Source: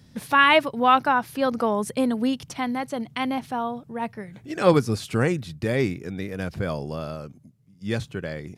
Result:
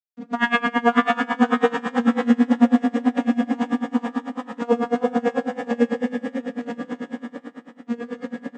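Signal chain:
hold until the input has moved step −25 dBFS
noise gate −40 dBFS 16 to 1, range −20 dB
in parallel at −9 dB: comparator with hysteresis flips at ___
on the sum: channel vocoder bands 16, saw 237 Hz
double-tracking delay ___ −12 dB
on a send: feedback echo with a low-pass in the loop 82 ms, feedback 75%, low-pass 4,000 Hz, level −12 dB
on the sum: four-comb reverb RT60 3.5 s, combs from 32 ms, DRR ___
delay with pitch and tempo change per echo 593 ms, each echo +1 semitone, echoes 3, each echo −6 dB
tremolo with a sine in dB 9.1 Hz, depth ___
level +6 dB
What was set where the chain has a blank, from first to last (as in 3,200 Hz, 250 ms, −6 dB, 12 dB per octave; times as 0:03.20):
−26.5 dBFS, 17 ms, 0 dB, 24 dB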